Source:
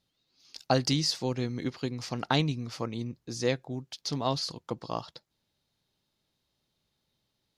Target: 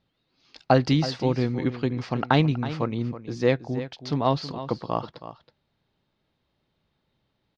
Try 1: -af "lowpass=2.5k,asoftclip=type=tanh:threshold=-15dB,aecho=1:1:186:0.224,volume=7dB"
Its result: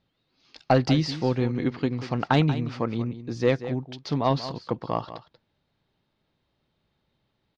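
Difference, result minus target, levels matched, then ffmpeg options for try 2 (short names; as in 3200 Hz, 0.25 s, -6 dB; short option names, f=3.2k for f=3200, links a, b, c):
soft clip: distortion +17 dB; echo 0.136 s early
-af "lowpass=2.5k,asoftclip=type=tanh:threshold=-5dB,aecho=1:1:322:0.224,volume=7dB"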